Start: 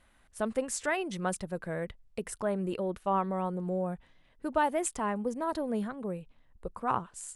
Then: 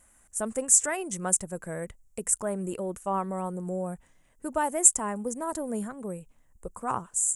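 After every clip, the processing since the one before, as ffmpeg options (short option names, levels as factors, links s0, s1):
-af "highshelf=f=5500:t=q:w=3:g=11.5"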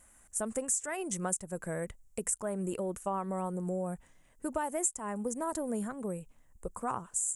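-af "acompressor=threshold=0.0316:ratio=5"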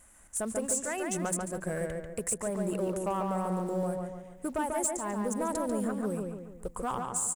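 -filter_complex "[0:a]asplit=2[s0][s1];[s1]acrusher=bits=4:mode=log:mix=0:aa=0.000001,volume=0.631[s2];[s0][s2]amix=inputs=2:normalize=0,asoftclip=type=tanh:threshold=0.0794,asplit=2[s3][s4];[s4]adelay=142,lowpass=f=2900:p=1,volume=0.708,asplit=2[s5][s6];[s6]adelay=142,lowpass=f=2900:p=1,volume=0.47,asplit=2[s7][s8];[s8]adelay=142,lowpass=f=2900:p=1,volume=0.47,asplit=2[s9][s10];[s10]adelay=142,lowpass=f=2900:p=1,volume=0.47,asplit=2[s11][s12];[s12]adelay=142,lowpass=f=2900:p=1,volume=0.47,asplit=2[s13][s14];[s14]adelay=142,lowpass=f=2900:p=1,volume=0.47[s15];[s3][s5][s7][s9][s11][s13][s15]amix=inputs=7:normalize=0,volume=0.841"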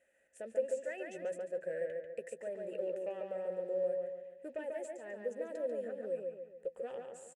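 -filter_complex "[0:a]asplit=3[s0][s1][s2];[s0]bandpass=f=530:t=q:w=8,volume=1[s3];[s1]bandpass=f=1840:t=q:w=8,volume=0.501[s4];[s2]bandpass=f=2480:t=q:w=8,volume=0.355[s5];[s3][s4][s5]amix=inputs=3:normalize=0,asplit=2[s6][s7];[s7]adelay=13,volume=0.251[s8];[s6][s8]amix=inputs=2:normalize=0,volume=1.33"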